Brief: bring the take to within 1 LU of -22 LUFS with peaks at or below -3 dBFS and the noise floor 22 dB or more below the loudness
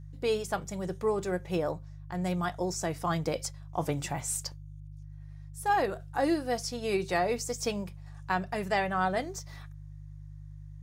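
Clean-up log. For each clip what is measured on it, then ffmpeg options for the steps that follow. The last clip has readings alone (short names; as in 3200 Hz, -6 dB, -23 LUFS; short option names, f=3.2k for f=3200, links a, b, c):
hum 50 Hz; harmonics up to 150 Hz; hum level -43 dBFS; loudness -31.5 LUFS; peak -16.0 dBFS; loudness target -22.0 LUFS
-> -af "bandreject=f=50:t=h:w=4,bandreject=f=100:t=h:w=4,bandreject=f=150:t=h:w=4"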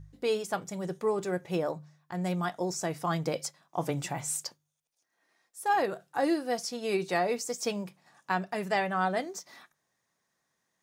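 hum none; loudness -31.5 LUFS; peak -16.0 dBFS; loudness target -22.0 LUFS
-> -af "volume=9.5dB"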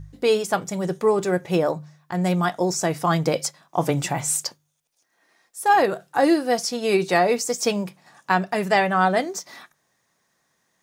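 loudness -22.0 LUFS; peak -6.5 dBFS; noise floor -71 dBFS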